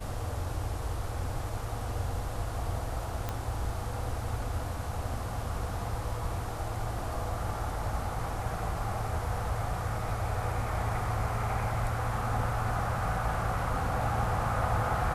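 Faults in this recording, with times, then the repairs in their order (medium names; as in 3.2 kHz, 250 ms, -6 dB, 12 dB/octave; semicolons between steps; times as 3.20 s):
3.29 s: pop -18 dBFS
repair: de-click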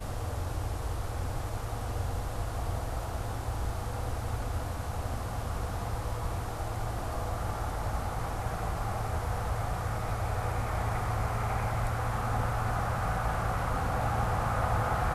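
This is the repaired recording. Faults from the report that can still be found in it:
nothing left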